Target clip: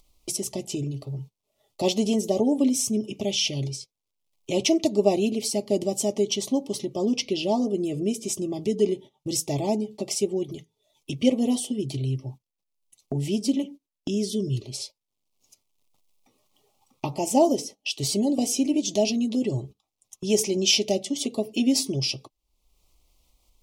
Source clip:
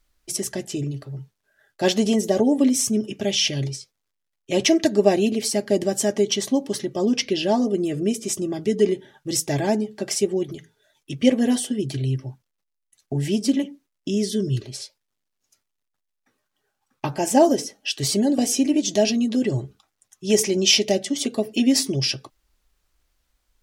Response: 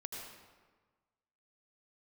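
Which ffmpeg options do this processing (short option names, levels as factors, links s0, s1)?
-af "acompressor=mode=upward:threshold=0.0794:ratio=2.5,asuperstop=centerf=1600:order=4:qfactor=1.3,agate=range=0.158:threshold=0.0158:ratio=16:detection=peak,volume=0.668"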